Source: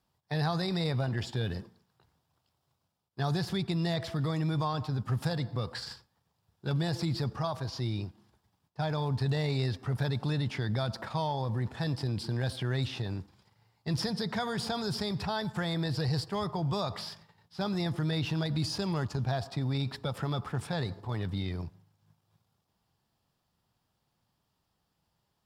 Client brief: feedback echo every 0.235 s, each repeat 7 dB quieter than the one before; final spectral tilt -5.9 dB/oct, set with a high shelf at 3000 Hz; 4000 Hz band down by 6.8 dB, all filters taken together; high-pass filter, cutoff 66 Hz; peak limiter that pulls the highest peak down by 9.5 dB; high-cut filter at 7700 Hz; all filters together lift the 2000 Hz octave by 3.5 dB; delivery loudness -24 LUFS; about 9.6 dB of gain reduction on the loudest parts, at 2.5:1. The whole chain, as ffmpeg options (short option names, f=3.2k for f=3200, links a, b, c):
-af "highpass=66,lowpass=7.7k,equalizer=f=2k:t=o:g=8,highshelf=f=3k:g=-9,equalizer=f=4k:t=o:g=-3,acompressor=threshold=-41dB:ratio=2.5,alimiter=level_in=10dB:limit=-24dB:level=0:latency=1,volume=-10dB,aecho=1:1:235|470|705|940|1175:0.447|0.201|0.0905|0.0407|0.0183,volume=19dB"